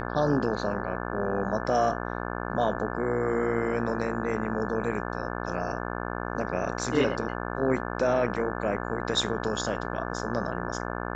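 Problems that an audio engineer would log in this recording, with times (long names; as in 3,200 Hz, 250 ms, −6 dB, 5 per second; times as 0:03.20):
mains buzz 60 Hz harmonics 29 −33 dBFS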